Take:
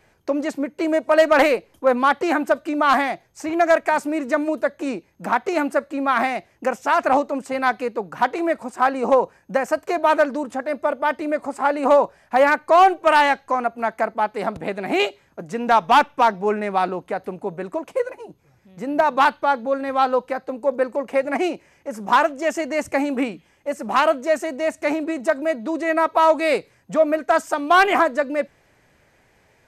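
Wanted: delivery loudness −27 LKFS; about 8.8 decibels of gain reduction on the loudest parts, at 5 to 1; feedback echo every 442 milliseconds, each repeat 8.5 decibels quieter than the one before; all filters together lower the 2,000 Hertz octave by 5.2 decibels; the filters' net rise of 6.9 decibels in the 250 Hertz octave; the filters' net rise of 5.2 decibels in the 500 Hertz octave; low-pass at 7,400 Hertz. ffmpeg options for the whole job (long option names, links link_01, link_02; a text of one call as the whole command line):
ffmpeg -i in.wav -af "lowpass=7400,equalizer=frequency=250:width_type=o:gain=6.5,equalizer=frequency=500:width_type=o:gain=6,equalizer=frequency=2000:width_type=o:gain=-8,acompressor=threshold=-16dB:ratio=5,aecho=1:1:442|884|1326|1768:0.376|0.143|0.0543|0.0206,volume=-6dB" out.wav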